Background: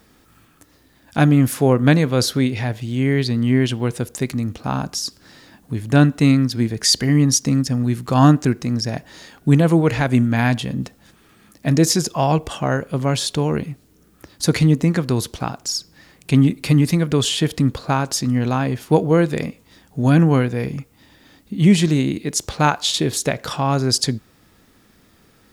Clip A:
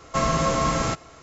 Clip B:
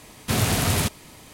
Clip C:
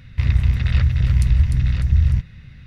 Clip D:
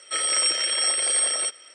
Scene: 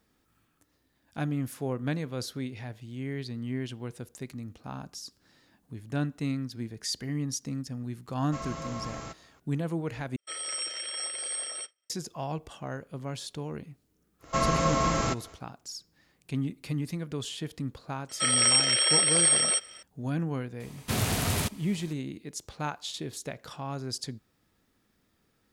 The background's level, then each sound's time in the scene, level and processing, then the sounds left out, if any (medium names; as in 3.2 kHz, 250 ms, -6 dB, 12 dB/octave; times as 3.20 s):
background -17 dB
8.18 s: add A -16 dB
10.16 s: replace with D -12 dB + expander -35 dBFS
14.19 s: add A -3.5 dB, fades 0.10 s
18.09 s: add D
20.60 s: add B -6 dB
not used: C